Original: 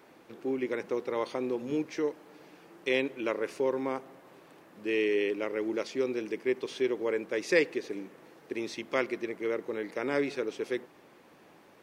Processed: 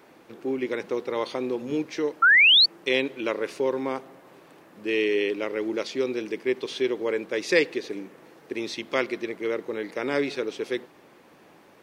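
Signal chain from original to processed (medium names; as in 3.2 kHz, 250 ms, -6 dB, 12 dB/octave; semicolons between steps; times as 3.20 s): dynamic bell 3.8 kHz, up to +6 dB, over -54 dBFS, Q 1.7; painted sound rise, 2.22–2.66 s, 1.3–4.6 kHz -19 dBFS; trim +3.5 dB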